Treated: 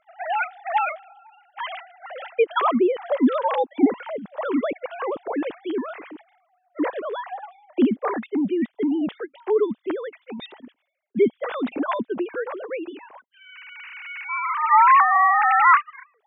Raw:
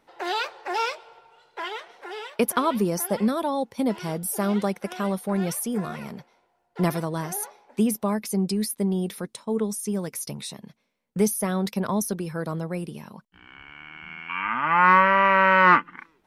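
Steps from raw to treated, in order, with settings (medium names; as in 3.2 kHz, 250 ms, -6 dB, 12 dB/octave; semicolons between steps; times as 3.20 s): formants replaced by sine waves; trim +2 dB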